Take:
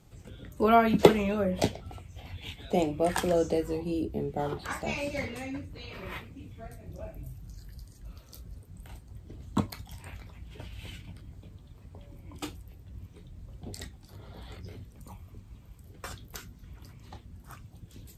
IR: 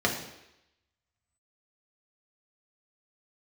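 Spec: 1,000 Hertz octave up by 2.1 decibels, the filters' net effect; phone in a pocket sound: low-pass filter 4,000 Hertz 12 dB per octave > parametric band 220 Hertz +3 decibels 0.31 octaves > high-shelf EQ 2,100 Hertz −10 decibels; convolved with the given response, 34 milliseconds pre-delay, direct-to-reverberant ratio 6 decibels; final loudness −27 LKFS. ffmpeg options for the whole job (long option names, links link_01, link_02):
-filter_complex "[0:a]equalizer=frequency=1000:width_type=o:gain=5.5,asplit=2[link_01][link_02];[1:a]atrim=start_sample=2205,adelay=34[link_03];[link_02][link_03]afir=irnorm=-1:irlink=0,volume=-18.5dB[link_04];[link_01][link_04]amix=inputs=2:normalize=0,lowpass=4000,equalizer=frequency=220:width_type=o:width=0.31:gain=3,highshelf=frequency=2100:gain=-10,volume=-1dB"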